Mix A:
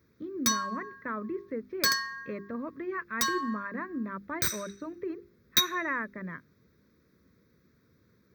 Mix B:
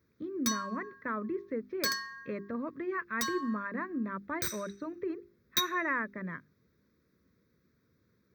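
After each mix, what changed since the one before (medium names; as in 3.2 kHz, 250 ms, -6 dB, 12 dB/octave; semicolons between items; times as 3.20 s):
background -6.0 dB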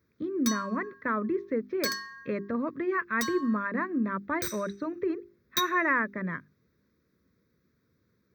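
speech +6.0 dB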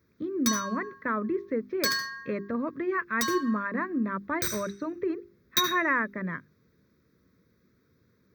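reverb: on, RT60 0.35 s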